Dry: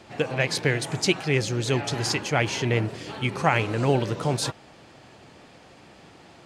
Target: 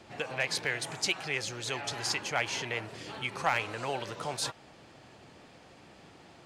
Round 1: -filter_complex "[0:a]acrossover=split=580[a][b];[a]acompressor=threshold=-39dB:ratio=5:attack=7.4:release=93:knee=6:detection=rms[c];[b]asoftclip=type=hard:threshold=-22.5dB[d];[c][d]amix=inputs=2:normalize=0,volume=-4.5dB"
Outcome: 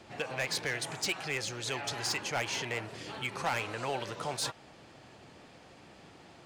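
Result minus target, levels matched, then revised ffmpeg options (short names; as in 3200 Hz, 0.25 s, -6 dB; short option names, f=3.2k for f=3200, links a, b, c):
hard clip: distortion +14 dB
-filter_complex "[0:a]acrossover=split=580[a][b];[a]acompressor=threshold=-39dB:ratio=5:attack=7.4:release=93:knee=6:detection=rms[c];[b]asoftclip=type=hard:threshold=-13.5dB[d];[c][d]amix=inputs=2:normalize=0,volume=-4.5dB"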